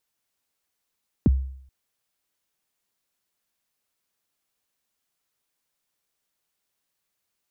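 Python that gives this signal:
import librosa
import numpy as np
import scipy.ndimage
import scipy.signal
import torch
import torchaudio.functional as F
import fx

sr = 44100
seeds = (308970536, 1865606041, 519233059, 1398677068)

y = fx.drum_kick(sr, seeds[0], length_s=0.43, level_db=-11.5, start_hz=340.0, end_hz=66.0, sweep_ms=26.0, decay_s=0.64, click=False)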